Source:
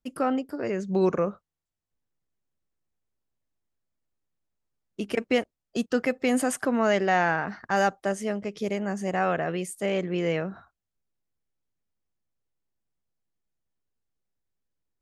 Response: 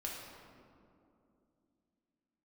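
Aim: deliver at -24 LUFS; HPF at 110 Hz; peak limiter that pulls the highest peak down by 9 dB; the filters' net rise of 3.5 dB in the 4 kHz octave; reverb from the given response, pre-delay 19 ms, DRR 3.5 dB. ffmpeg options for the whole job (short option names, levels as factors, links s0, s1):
-filter_complex "[0:a]highpass=110,equalizer=f=4000:t=o:g=5.5,alimiter=limit=0.106:level=0:latency=1,asplit=2[s0][s1];[1:a]atrim=start_sample=2205,adelay=19[s2];[s1][s2]afir=irnorm=-1:irlink=0,volume=0.631[s3];[s0][s3]amix=inputs=2:normalize=0,volume=1.78"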